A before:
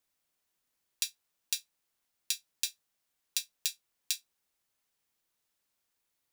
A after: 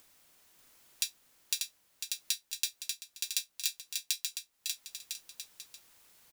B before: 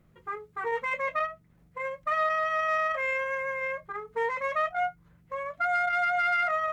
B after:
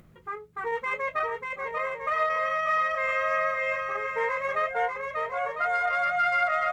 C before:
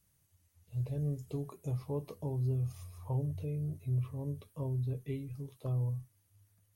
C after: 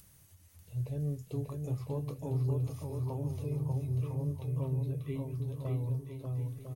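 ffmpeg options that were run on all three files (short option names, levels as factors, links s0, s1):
-af "acompressor=mode=upward:threshold=0.00398:ratio=2.5,aecho=1:1:590|1003|1292|1494|1636:0.631|0.398|0.251|0.158|0.1"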